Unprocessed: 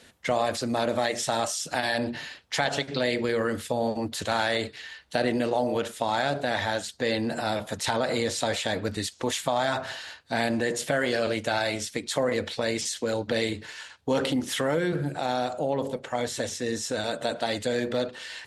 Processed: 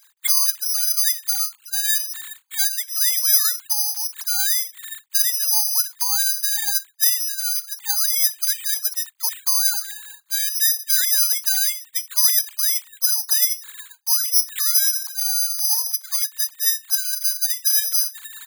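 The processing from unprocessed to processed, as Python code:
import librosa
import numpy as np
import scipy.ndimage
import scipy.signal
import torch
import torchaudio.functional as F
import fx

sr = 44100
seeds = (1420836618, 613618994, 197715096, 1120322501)

y = fx.sine_speech(x, sr)
y = (np.kron(scipy.signal.resample_poly(y, 1, 8), np.eye(8)[0]) * 8)[:len(y)]
y = scipy.signal.sosfilt(scipy.signal.butter(12, 870.0, 'highpass', fs=sr, output='sos'), y)
y = y * librosa.db_to_amplitude(-2.0)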